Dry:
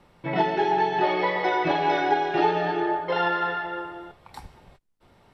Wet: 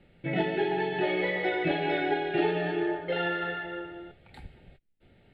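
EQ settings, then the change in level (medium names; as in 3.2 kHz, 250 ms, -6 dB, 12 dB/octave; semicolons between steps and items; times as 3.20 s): distance through air 71 m; static phaser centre 2.5 kHz, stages 4; 0.0 dB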